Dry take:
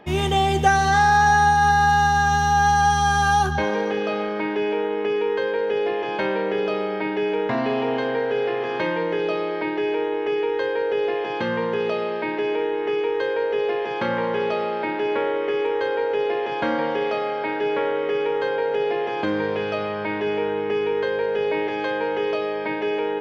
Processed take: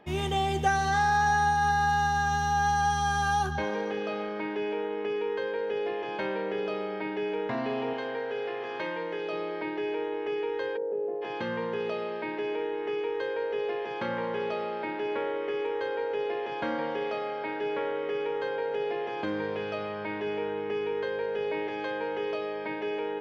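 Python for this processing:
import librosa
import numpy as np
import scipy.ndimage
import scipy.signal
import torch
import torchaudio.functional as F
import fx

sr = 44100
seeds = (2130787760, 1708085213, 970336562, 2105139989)

y = fx.low_shelf(x, sr, hz=260.0, db=-9.0, at=(7.93, 9.33))
y = fx.cheby1_bandpass(y, sr, low_hz=160.0, high_hz=620.0, order=2, at=(10.76, 11.21), fade=0.02)
y = y * 10.0 ** (-8.0 / 20.0)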